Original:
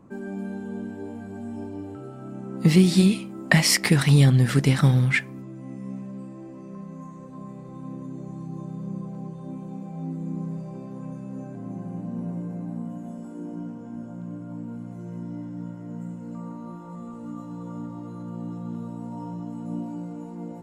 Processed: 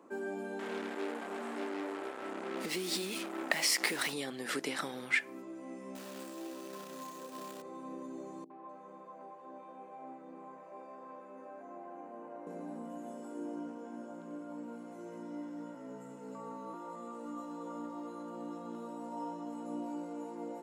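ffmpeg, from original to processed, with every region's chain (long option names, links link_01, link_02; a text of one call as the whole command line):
ffmpeg -i in.wav -filter_complex "[0:a]asettb=1/sr,asplit=3[link_01][link_02][link_03];[link_01]atrim=end=0.594[link_04];[link_02]atrim=start=0.59:end=4.13,asetpts=PTS-STARTPTS,afade=type=in:duration=0.004:curve=qsin,afade=type=out:start_time=3.536:duration=0.004:curve=qsin,acompressor=threshold=-24dB:ratio=2.5:attack=3.2:release=140:knee=1:detection=peak,acrusher=bits=5:mix=0:aa=0.5[link_05];[link_03]atrim=start=4.126[link_06];[link_04][link_05]acrossfade=duration=0.004:curve1=hsin:curve2=qsin[link_07];[link_07][link_06]acrossfade=duration=0.004:curve1=qsin:curve2=hsin,asettb=1/sr,asplit=3[link_08][link_09][link_10];[link_08]atrim=end=5.954[link_11];[link_09]atrim=start=5.95:end=7.62,asetpts=PTS-STARTPTS,afade=type=in:duration=0.004:curve=qsin,afade=type=out:start_time=1.666:duration=0.004:curve=qsin,highshelf=frequency=3300:gain=9,acrusher=bits=3:mode=log:mix=0:aa=0.000001,bandreject=frequency=2100:width=11[link_12];[link_10]atrim=start=7.616[link_13];[link_11][link_12]acrossfade=duration=0.004:curve1=hsin:curve2=qsin[link_14];[link_14][link_13]acrossfade=duration=0.004:curve1=qsin:curve2=hsin,asettb=1/sr,asplit=3[link_15][link_16][link_17];[link_15]atrim=end=8.444[link_18];[link_16]atrim=start=8.44:end=12.47,asetpts=PTS-STARTPTS,afade=type=in:duration=0.004:curve=qsin,afade=type=out:start_time=4.026:duration=0.004:curve=qsin,acrossover=split=350 2800:gain=0.141 1 0.158[link_19][link_20][link_21];[link_19][link_20][link_21]amix=inputs=3:normalize=0,asplit=2[link_22][link_23];[link_23]adelay=20,volume=-10.5dB[link_24];[link_22][link_24]amix=inputs=2:normalize=0,atrim=end_sample=177723,acrossover=split=410|3400[link_25][link_26][link_27];[link_26]adelay=60[link_28];[link_27]adelay=250[link_29];[link_25][link_28][link_29]amix=inputs=3:normalize=0,atrim=end_sample=177723[link_30];[link_17]atrim=start=12.466[link_31];[link_18][link_30]acrossfade=duration=0.004:curve1=hsin:curve2=qsin[link_32];[link_32][link_31]acrossfade=duration=0.004:curve1=qsin:curve2=hsin,asettb=1/sr,asplit=3[link_33][link_34][link_35];[link_33]atrim=end=15.754[link_36];[link_34]atrim=start=15.75:end=16.74,asetpts=PTS-STARTPTS,afade=type=in:duration=0.004:curve=qsin,afade=type=out:start_time=0.986:duration=0.004:curve=qsin,lowshelf=frequency=120:gain=9,afreqshift=-32[link_37];[link_35]atrim=start=16.736[link_38];[link_36][link_37]acrossfade=duration=0.004:curve1=hsin:curve2=qsin[link_39];[link_39][link_38]acrossfade=duration=0.004:curve1=qsin:curve2=hsin,acompressor=threshold=-25dB:ratio=6,highpass=frequency=320:width=0.5412,highpass=frequency=320:width=1.3066" out.wav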